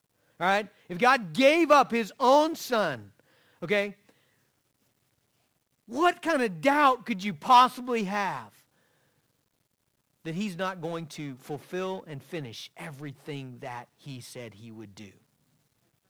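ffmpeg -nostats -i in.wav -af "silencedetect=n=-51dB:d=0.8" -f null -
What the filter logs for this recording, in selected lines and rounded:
silence_start: 4.10
silence_end: 5.88 | silence_duration: 1.78
silence_start: 8.61
silence_end: 10.25 | silence_duration: 1.64
silence_start: 15.18
silence_end: 16.10 | silence_duration: 0.92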